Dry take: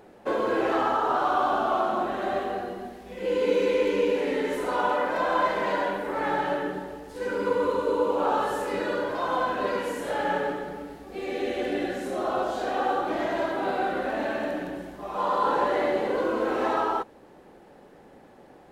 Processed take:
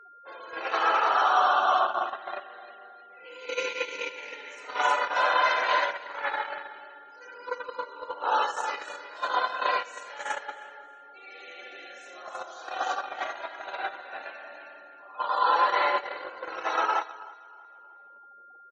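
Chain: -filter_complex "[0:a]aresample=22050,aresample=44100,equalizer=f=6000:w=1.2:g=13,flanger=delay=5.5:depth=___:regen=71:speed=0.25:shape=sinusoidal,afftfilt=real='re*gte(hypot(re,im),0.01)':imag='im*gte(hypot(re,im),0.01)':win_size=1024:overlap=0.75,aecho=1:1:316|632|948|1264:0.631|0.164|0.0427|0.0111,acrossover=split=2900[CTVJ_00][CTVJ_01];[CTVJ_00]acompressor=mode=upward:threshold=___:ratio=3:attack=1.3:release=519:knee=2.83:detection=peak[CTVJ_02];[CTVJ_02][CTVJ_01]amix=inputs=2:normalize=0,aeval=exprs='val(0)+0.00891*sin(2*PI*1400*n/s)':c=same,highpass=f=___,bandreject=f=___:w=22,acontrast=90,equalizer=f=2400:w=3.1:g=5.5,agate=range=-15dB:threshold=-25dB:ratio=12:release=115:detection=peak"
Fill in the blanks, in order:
3.3, -33dB, 870, 4800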